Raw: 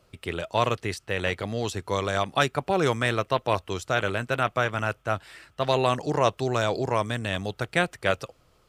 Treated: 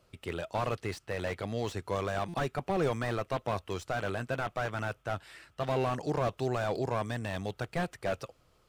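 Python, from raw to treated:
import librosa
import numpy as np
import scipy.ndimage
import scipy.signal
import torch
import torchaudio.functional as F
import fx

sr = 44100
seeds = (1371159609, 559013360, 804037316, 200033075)

y = fx.buffer_glitch(x, sr, at_s=(2.28,), block=256, repeats=9)
y = fx.slew_limit(y, sr, full_power_hz=62.0)
y = y * librosa.db_to_amplitude(-4.5)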